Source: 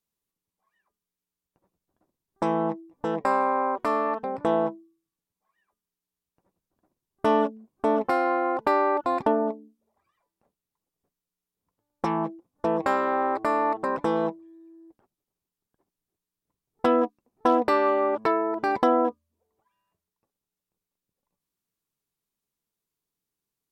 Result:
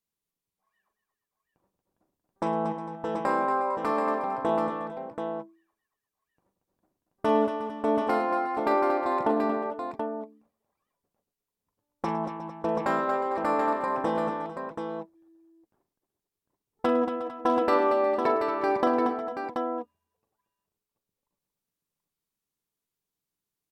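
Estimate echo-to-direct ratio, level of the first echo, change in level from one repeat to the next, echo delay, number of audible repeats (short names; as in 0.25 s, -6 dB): -2.5 dB, -10.0 dB, no steady repeat, 41 ms, 6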